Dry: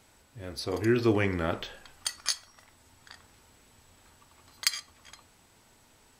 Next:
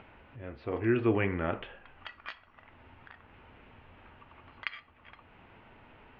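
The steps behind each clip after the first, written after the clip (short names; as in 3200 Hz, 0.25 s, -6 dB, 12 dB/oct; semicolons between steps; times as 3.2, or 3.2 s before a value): elliptic low-pass 2800 Hz, stop band 80 dB; upward compressor, threshold -44 dBFS; gain -1.5 dB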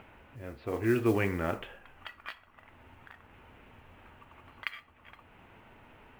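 modulation noise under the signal 26 dB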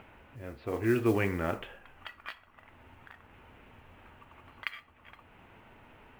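nothing audible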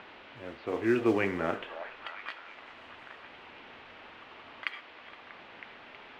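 band noise 270–3000 Hz -54 dBFS; three-band isolator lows -14 dB, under 170 Hz, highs -20 dB, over 7000 Hz; delay with a stepping band-pass 0.32 s, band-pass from 740 Hz, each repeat 0.7 oct, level -7.5 dB; gain +1.5 dB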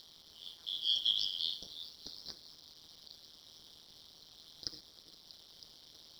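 four-band scrambler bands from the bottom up 3412; AM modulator 160 Hz, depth 80%; in parallel at -7 dB: requantised 8-bit, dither none; on the sum: gain -6 dB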